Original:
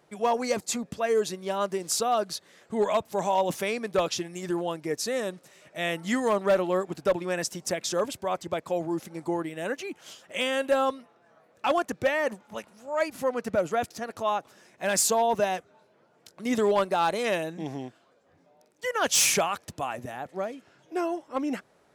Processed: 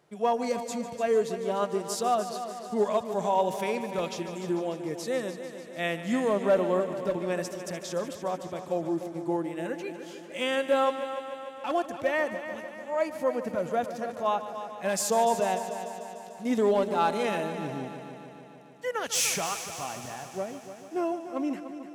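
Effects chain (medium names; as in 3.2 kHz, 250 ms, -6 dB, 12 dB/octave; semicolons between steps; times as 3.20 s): harmonic-percussive split percussive -10 dB; multi-head delay 148 ms, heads first and second, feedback 64%, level -13.5 dB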